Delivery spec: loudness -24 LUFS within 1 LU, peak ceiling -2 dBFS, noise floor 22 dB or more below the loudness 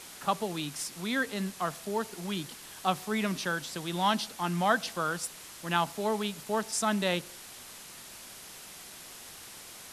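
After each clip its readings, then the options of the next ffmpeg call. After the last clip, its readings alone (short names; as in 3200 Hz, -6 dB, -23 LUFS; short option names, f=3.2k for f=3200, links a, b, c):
noise floor -48 dBFS; noise floor target -54 dBFS; loudness -31.5 LUFS; peak -12.0 dBFS; loudness target -24.0 LUFS
-> -af "afftdn=nr=6:nf=-48"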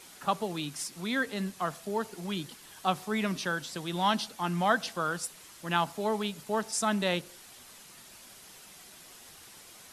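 noise floor -52 dBFS; noise floor target -54 dBFS
-> -af "afftdn=nr=6:nf=-52"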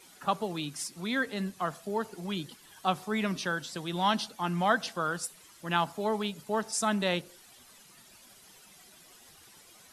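noise floor -56 dBFS; loudness -31.5 LUFS; peak -12.0 dBFS; loudness target -24.0 LUFS
-> -af "volume=7.5dB"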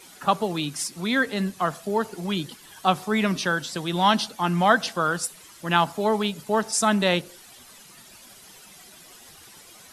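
loudness -24.0 LUFS; peak -4.5 dBFS; noise floor -49 dBFS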